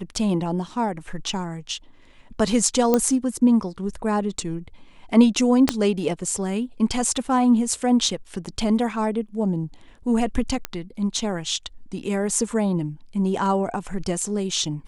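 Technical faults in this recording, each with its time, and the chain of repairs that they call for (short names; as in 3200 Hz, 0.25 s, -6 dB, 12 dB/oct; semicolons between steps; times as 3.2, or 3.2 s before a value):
2.94 pop -6 dBFS
5.69 pop -3 dBFS
10.65 pop -9 dBFS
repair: de-click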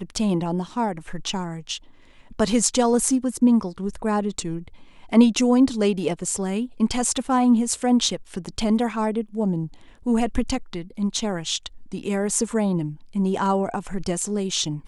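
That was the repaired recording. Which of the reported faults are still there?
5.69 pop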